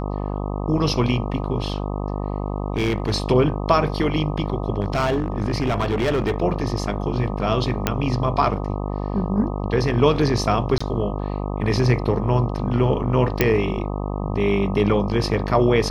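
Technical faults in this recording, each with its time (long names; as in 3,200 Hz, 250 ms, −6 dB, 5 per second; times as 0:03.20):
mains buzz 50 Hz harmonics 25 −26 dBFS
0:01.62–0:03.15: clipping −16 dBFS
0:04.81–0:06.36: clipping −16.5 dBFS
0:07.87: click −4 dBFS
0:10.78–0:10.80: drop-out 25 ms
0:13.41: click −3 dBFS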